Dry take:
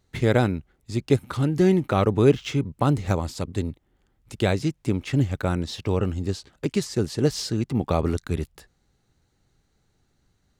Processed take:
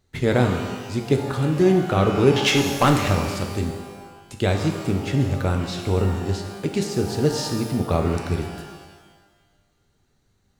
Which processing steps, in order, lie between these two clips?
2.36–3.08 overdrive pedal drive 21 dB, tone 7700 Hz, clips at -7.5 dBFS; shimmer reverb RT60 1.3 s, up +12 st, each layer -8 dB, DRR 4 dB

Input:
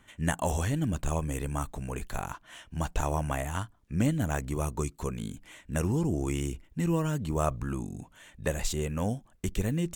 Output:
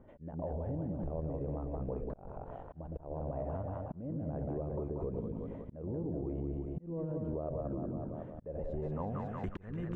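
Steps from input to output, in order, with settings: on a send: split-band echo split 520 Hz, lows 0.113 s, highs 0.183 s, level -6 dB; on the sum: limiter -23 dBFS, peak gain reduction 10 dB; low-pass sweep 550 Hz -> 1400 Hz, 8.68–9.26; auto swell 0.627 s; compressor, threshold -38 dBFS, peak gain reduction 11.5 dB; gain +3.5 dB

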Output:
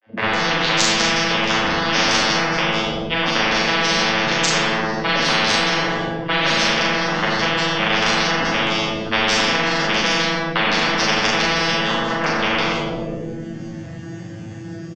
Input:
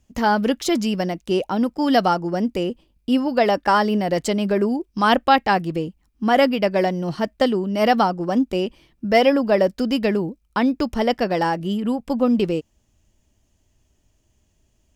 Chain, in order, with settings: arpeggiated vocoder bare fifth, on A2, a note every 0.322 s; in parallel at 0 dB: limiter -15 dBFS, peak gain reduction 7.5 dB; on the sum: speaker cabinet 150–6100 Hz, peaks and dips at 230 Hz -5 dB, 1000 Hz -3 dB, 1700 Hz +9 dB; AGC gain up to 11.5 dB; soft clip -5 dBFS, distortion -19 dB; grains, spray 27 ms, pitch spread up and down by 0 st; doubler 39 ms -2.5 dB; three bands offset in time mids, lows, highs 40/160 ms, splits 490/3300 Hz; reverb RT60 1.1 s, pre-delay 4 ms, DRR -3 dB; spectral compressor 10:1; gain -5 dB

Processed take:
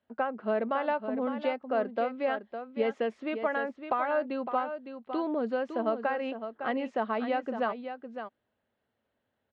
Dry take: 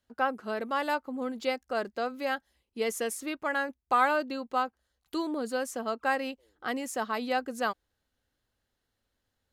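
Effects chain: compressor 5:1, threshold -29 dBFS, peak gain reduction 10 dB; speaker cabinet 110–3100 Hz, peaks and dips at 220 Hz +6 dB, 430 Hz +4 dB, 630 Hz +8 dB, 930 Hz +3 dB; on a send: echo 0.558 s -9 dB

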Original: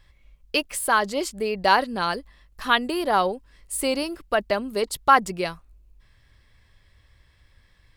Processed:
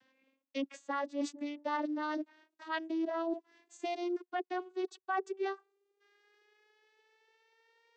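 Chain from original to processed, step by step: vocoder on a gliding note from C4, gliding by +10 st; reverse; compressor 5:1, threshold -34 dBFS, peak gain reduction 19 dB; reverse

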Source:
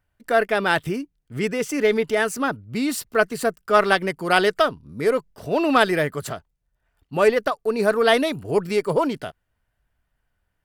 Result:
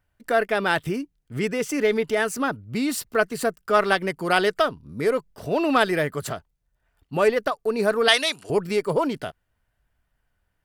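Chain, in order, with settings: 8.08–8.5 weighting filter ITU-R 468; in parallel at -3 dB: compressor, threshold -25 dBFS, peak gain reduction 15.5 dB; on the sum: gain -4 dB

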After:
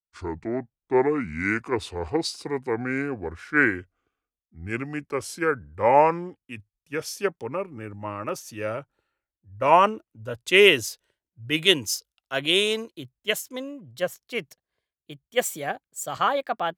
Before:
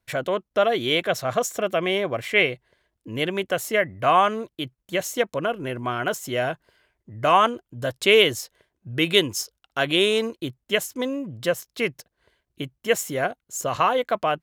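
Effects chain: speed glide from 61% -> 111%; three-band expander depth 70%; gain -4 dB

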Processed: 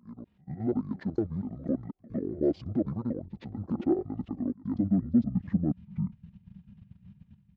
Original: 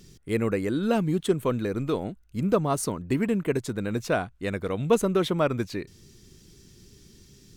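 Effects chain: slices in reverse order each 0.238 s, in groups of 2; level quantiser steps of 13 dB; limiter -25.5 dBFS, peak gain reduction 9 dB; band-pass sweep 700 Hz -> 320 Hz, 4.01–6; pre-echo 0.104 s -20.5 dB; AGC gain up to 14 dB; pitch shift -11.5 st

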